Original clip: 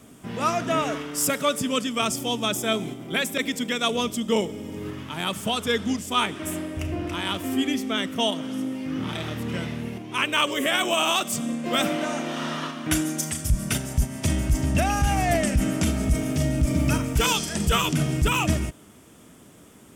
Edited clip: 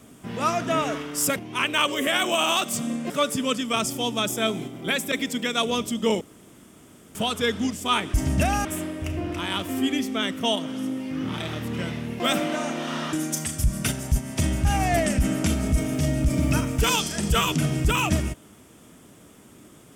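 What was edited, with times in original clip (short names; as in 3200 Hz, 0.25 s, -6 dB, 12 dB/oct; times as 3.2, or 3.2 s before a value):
4.47–5.41 room tone
9.95–11.69 move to 1.36
12.62–12.99 cut
14.51–15.02 move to 6.4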